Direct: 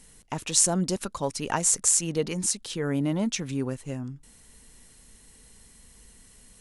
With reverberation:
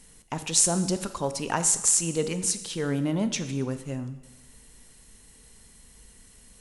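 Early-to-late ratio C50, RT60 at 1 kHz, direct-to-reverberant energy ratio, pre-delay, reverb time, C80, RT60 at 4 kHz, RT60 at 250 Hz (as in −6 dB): 12.0 dB, 1.1 s, 10.5 dB, 20 ms, 1.1 s, 13.5 dB, 1.0 s, 1.1 s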